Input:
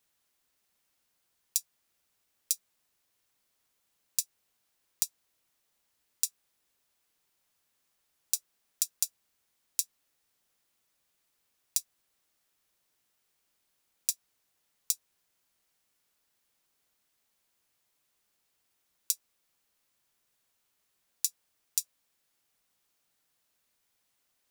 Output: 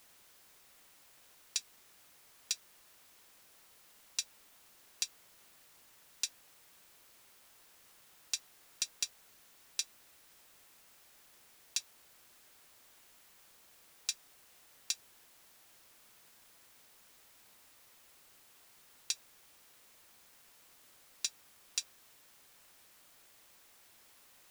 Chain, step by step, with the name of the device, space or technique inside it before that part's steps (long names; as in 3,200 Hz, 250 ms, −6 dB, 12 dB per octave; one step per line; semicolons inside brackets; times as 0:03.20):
aircraft radio (band-pass filter 390–2,700 Hz; hard clipping −33.5 dBFS, distortion −10 dB; white noise bed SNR 14 dB)
level +13 dB